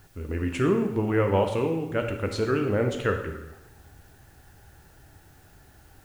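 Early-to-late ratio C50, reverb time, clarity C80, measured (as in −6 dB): 7.0 dB, 0.95 s, 9.5 dB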